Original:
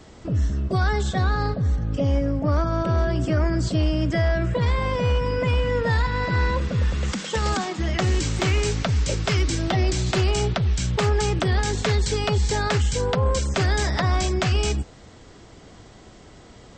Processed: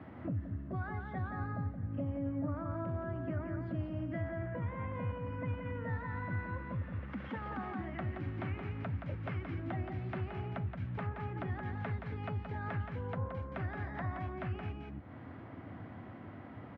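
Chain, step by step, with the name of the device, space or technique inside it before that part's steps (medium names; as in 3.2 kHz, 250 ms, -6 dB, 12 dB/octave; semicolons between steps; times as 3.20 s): 4.29–4.92 s: steep low-pass 3.4 kHz; delay 173 ms -4.5 dB; bass amplifier (compression 4:1, threshold -35 dBFS, peak gain reduction 16 dB; cabinet simulation 88–2100 Hz, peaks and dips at 98 Hz +6 dB, 260 Hz +6 dB, 430 Hz -9 dB); trim -2.5 dB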